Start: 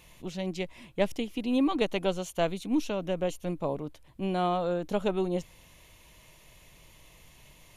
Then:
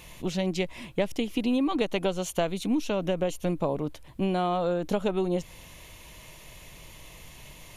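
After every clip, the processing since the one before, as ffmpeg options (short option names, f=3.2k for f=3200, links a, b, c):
-af "acompressor=threshold=-31dB:ratio=6,volume=8dB"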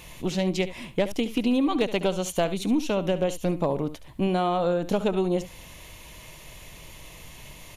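-af "volume=17.5dB,asoftclip=hard,volume=-17.5dB,aecho=1:1:70:0.2,volume=2.5dB"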